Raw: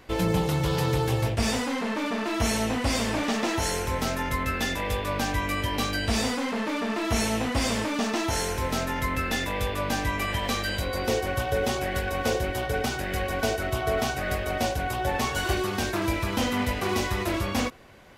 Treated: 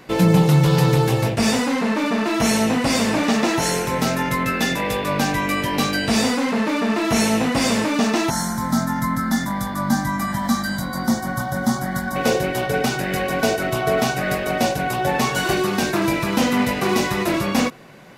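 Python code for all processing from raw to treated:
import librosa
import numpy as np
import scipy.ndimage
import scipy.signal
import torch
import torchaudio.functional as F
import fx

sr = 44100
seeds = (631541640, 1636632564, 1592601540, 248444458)

y = fx.chain(x, sr, fx.peak_eq(hz=220.0, db=12.0, octaves=0.3),
    fx.fixed_phaser(hz=1100.0, stages=4), at=(8.3, 12.16))
y = fx.low_shelf_res(y, sr, hz=110.0, db=-10.0, q=3.0)
y = fx.notch(y, sr, hz=3200.0, q=17.0)
y = F.gain(torch.from_numpy(y), 6.5).numpy()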